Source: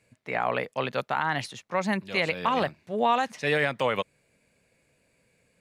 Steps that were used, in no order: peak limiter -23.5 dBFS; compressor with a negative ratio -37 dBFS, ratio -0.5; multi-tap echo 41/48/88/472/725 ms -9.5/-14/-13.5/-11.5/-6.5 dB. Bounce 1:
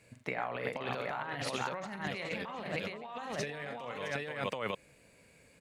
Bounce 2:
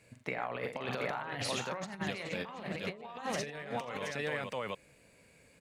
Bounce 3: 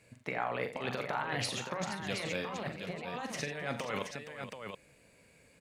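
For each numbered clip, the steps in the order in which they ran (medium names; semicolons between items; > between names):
multi-tap echo > peak limiter > compressor with a negative ratio; peak limiter > multi-tap echo > compressor with a negative ratio; peak limiter > compressor with a negative ratio > multi-tap echo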